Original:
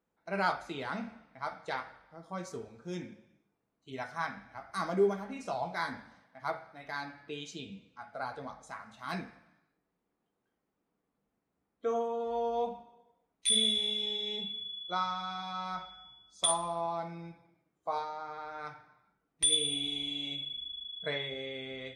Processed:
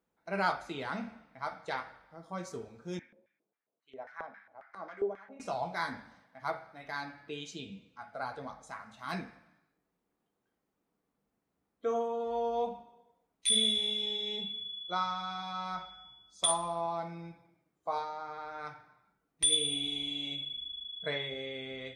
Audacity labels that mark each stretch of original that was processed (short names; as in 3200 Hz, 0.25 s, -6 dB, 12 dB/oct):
2.990000	5.400000	LFO band-pass square 3.7 Hz 550–1800 Hz